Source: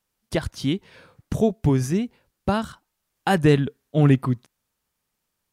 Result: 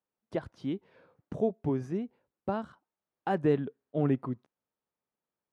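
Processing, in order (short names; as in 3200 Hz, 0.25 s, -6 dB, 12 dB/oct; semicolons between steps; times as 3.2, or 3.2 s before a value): band-pass 490 Hz, Q 0.65; gain -7 dB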